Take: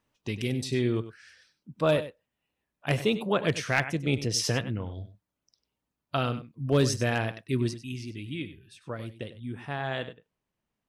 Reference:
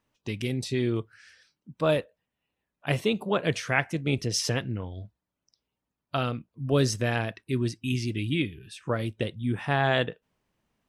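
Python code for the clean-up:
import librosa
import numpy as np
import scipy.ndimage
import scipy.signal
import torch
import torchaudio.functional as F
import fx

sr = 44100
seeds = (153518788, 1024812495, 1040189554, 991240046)

y = fx.fix_declip(x, sr, threshold_db=-14.0)
y = fx.fix_echo_inverse(y, sr, delay_ms=97, level_db=-13.5)
y = fx.fix_level(y, sr, at_s=7.82, step_db=8.5)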